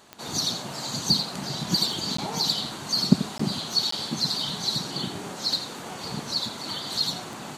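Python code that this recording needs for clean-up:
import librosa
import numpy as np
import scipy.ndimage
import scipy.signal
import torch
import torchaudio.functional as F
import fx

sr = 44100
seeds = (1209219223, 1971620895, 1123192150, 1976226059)

y = fx.fix_declick_ar(x, sr, threshold=10.0)
y = fx.fix_interpolate(y, sr, at_s=(2.17, 3.38, 3.91), length_ms=14.0)
y = fx.fix_echo_inverse(y, sr, delay_ms=86, level_db=-12.5)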